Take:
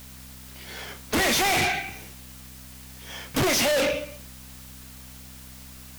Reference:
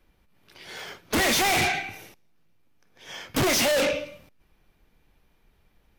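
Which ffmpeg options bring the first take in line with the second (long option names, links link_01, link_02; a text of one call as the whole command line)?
ffmpeg -i in.wav -af "bandreject=frequency=64.3:width_type=h:width=4,bandreject=frequency=128.6:width_type=h:width=4,bandreject=frequency=192.9:width_type=h:width=4,bandreject=frequency=257.2:width_type=h:width=4,afwtdn=0.0045" out.wav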